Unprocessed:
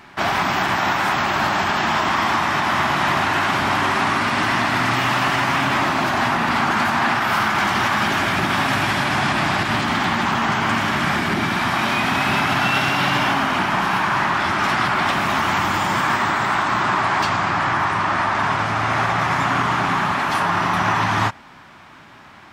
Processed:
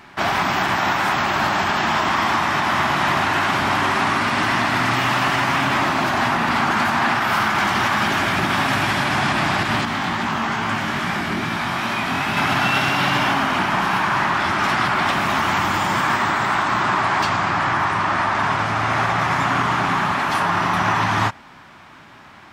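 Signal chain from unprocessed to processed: 9.85–12.37 chorus 2.4 Hz, delay 17 ms, depth 6 ms

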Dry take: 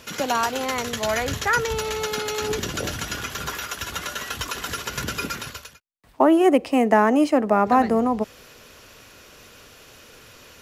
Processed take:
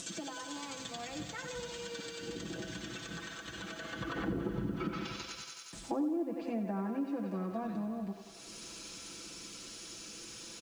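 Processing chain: Doppler pass-by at 4.37, 30 m/s, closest 2.2 m; upward compressor, threshold -48 dBFS; ten-band EQ 125 Hz +5 dB, 250 Hz +7 dB, 500 Hz -8 dB, 1000 Hz -8 dB, 2000 Hz -9 dB, 8000 Hz +9 dB; treble ducked by the level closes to 510 Hz, closed at -33 dBFS; Chebyshev low-pass 9400 Hz, order 3; bell 140 Hz -13 dB 0.76 oct; comb 6 ms, depth 93%; on a send: thinning echo 93 ms, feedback 79%, high-pass 340 Hz, level -8 dB; on the sum: compressor, threshold -47 dBFS, peak gain reduction 11.5 dB; HPF 85 Hz 6 dB/oct; treble ducked by the level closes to 1200 Hz, closed at -46 dBFS; lo-fi delay 85 ms, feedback 55%, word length 12-bit, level -12.5 dB; gain +16 dB

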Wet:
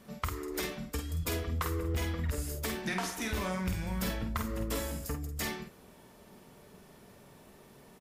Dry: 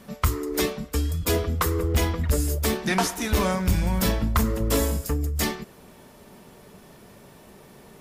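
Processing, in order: dynamic EQ 2000 Hz, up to +4 dB, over -42 dBFS, Q 0.9; compressor, threshold -23 dBFS, peak gain reduction 7 dB; doubler 49 ms -5.5 dB; gain -8 dB

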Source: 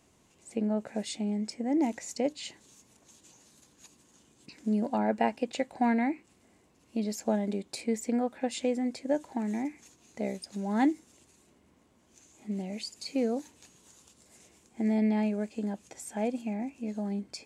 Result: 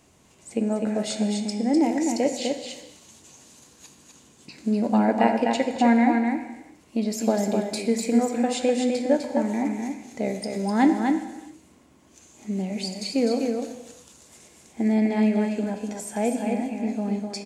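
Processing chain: on a send: echo 0.252 s -4.5 dB; on the sum: non-linear reverb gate 0.45 s falling, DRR 7 dB; gain +6 dB

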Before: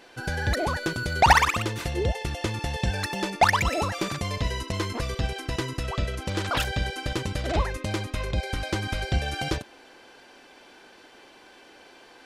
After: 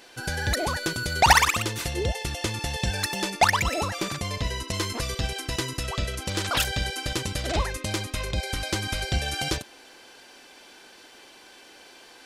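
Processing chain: high shelf 3500 Hz +10.5 dB, from 3.45 s +5.5 dB, from 4.69 s +11.5 dB; gain -1.5 dB

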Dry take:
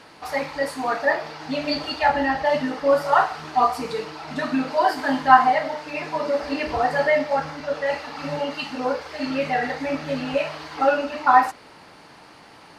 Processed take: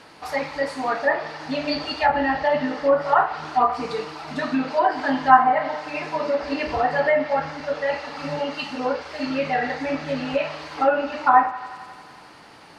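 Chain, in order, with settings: thinning echo 89 ms, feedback 81%, high-pass 420 Hz, level -17 dB; treble ducked by the level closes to 1900 Hz, closed at -13.5 dBFS

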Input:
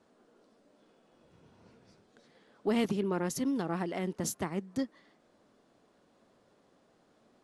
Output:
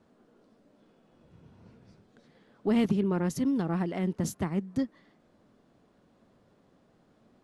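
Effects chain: tone controls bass +9 dB, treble -4 dB

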